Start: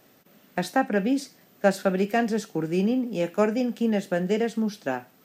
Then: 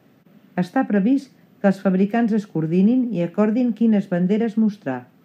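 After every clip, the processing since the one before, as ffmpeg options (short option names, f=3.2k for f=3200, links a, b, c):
-af "highpass=150,bass=f=250:g=15,treble=f=4k:g=-11"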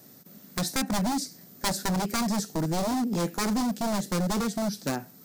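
-filter_complex "[0:a]asplit=2[a][b];[b]acompressor=threshold=-25dB:ratio=6,volume=-1.5dB[c];[a][c]amix=inputs=2:normalize=0,aeval=exprs='0.168*(abs(mod(val(0)/0.168+3,4)-2)-1)':c=same,aexciter=amount=8.4:drive=5.2:freq=4.2k,volume=-6.5dB"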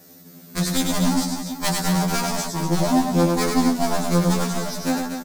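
-filter_complex "[0:a]asplit=2[a][b];[b]aecho=0:1:100|240|436|710.4|1095:0.631|0.398|0.251|0.158|0.1[c];[a][c]amix=inputs=2:normalize=0,afftfilt=real='re*2*eq(mod(b,4),0)':imag='im*2*eq(mod(b,4),0)':win_size=2048:overlap=0.75,volume=6.5dB"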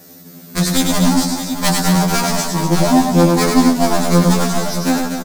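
-af "aecho=1:1:625:0.237,volume=6.5dB"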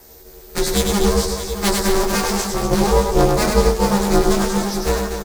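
-af "aeval=exprs='val(0)*sin(2*PI*200*n/s)':c=same"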